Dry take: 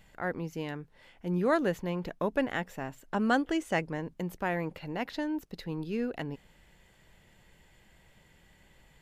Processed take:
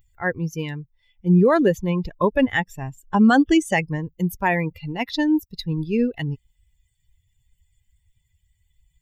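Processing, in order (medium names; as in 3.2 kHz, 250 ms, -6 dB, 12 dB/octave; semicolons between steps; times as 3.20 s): expander on every frequency bin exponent 2; 0.81–3.26 s: treble shelf 7.1 kHz -6 dB; loudness maximiser +25.5 dB; trim -7.5 dB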